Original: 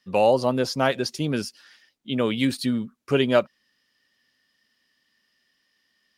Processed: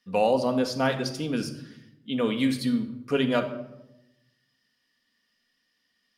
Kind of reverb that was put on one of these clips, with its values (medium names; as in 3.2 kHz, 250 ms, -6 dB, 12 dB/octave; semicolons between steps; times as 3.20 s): simulated room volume 2900 m³, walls furnished, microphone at 1.8 m; trim -4.5 dB